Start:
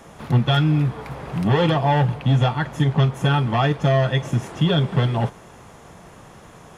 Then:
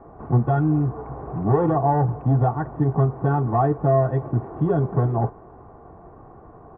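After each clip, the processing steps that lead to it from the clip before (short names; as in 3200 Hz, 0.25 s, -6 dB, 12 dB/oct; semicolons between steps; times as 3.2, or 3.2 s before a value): LPF 1100 Hz 24 dB/oct; comb 2.7 ms, depth 46%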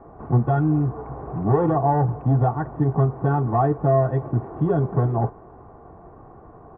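nothing audible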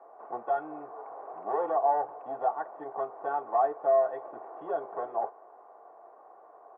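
ladder high-pass 500 Hz, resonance 40%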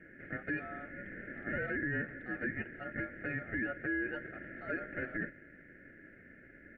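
limiter -25.5 dBFS, peak gain reduction 11 dB; ring modulator 1000 Hz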